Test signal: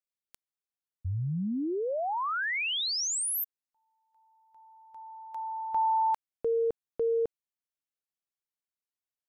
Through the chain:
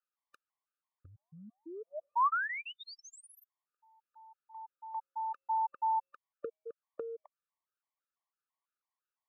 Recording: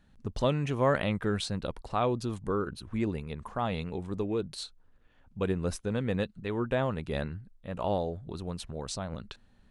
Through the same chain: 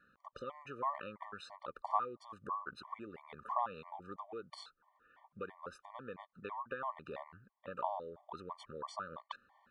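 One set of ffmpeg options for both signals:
ffmpeg -i in.wav -af "acompressor=threshold=-39dB:ratio=12:attack=22:release=248:knee=1:detection=peak,bandpass=frequency=1100:width_type=q:width=3.2:csg=0,afftfilt=real='re*gt(sin(2*PI*3*pts/sr)*(1-2*mod(floor(b*sr/1024/600),2)),0)':imag='im*gt(sin(2*PI*3*pts/sr)*(1-2*mod(floor(b*sr/1024/600),2)),0)':win_size=1024:overlap=0.75,volume=15dB" out.wav

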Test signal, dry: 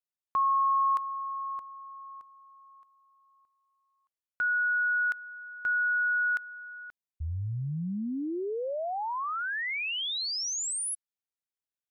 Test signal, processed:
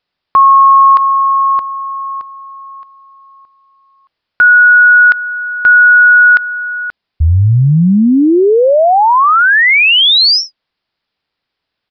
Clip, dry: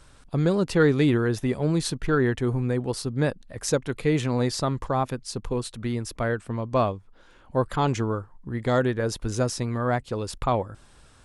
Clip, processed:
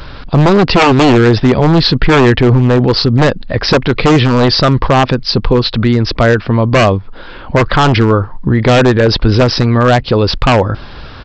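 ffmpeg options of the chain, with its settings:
ffmpeg -i in.wav -af "aresample=11025,aresample=44100,aresample=16000,aeval=exprs='0.112*(abs(mod(val(0)/0.112+3,4)-2)-1)':channel_layout=same,aresample=44100,alimiter=level_in=25.5dB:limit=-1dB:release=50:level=0:latency=1,volume=-1dB" out.wav

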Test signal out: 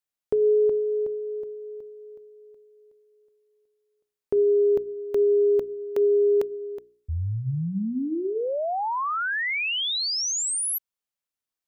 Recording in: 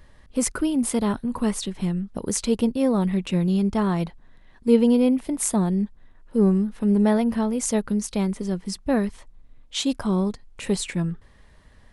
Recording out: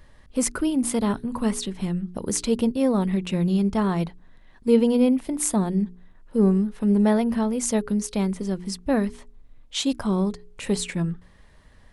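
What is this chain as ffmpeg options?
ffmpeg -i in.wav -af "bandreject=frequency=59.83:width_type=h:width=4,bandreject=frequency=119.66:width_type=h:width=4,bandreject=frequency=179.49:width_type=h:width=4,bandreject=frequency=239.32:width_type=h:width=4,bandreject=frequency=299.15:width_type=h:width=4,bandreject=frequency=358.98:width_type=h:width=4,bandreject=frequency=418.81:width_type=h:width=4" out.wav

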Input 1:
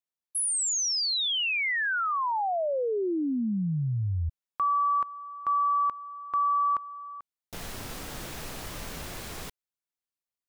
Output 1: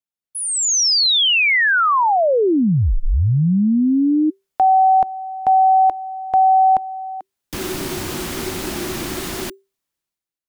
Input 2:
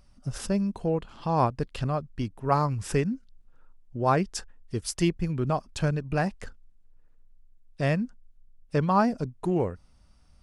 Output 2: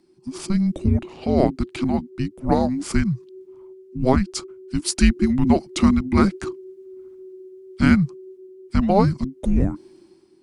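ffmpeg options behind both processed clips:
ffmpeg -i in.wav -af "afreqshift=-390,dynaudnorm=framelen=130:gausssize=9:maxgain=14dB,volume=-1.5dB" out.wav

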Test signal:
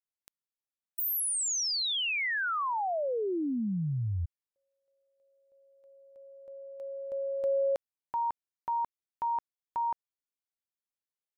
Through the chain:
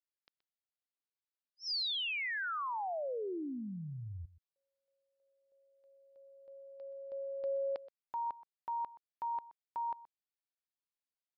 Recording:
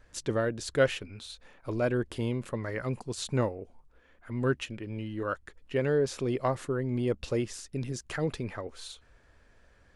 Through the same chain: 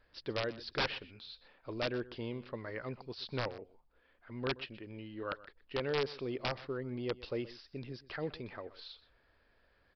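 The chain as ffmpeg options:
ffmpeg -i in.wav -af "bass=frequency=250:gain=-6,treble=frequency=4000:gain=4,aresample=11025,aeval=exprs='(mod(9.44*val(0)+1,2)-1)/9.44':channel_layout=same,aresample=44100,aecho=1:1:125:0.126,volume=-6.5dB" out.wav

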